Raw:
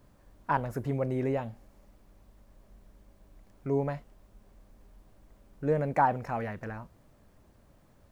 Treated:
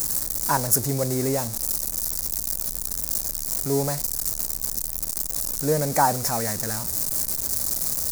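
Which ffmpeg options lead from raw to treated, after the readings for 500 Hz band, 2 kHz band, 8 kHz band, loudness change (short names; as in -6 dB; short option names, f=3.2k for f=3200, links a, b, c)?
+5.0 dB, +5.0 dB, n/a, +8.0 dB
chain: -af "aeval=exprs='val(0)+0.5*0.0112*sgn(val(0))':c=same,aexciter=amount=8.7:drive=8.5:freq=4.6k,volume=4dB"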